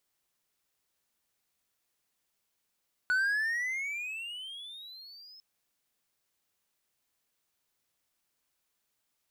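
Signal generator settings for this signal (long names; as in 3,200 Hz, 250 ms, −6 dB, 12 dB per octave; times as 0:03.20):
pitch glide with a swell triangle, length 2.30 s, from 1,470 Hz, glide +22 semitones, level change −26 dB, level −22 dB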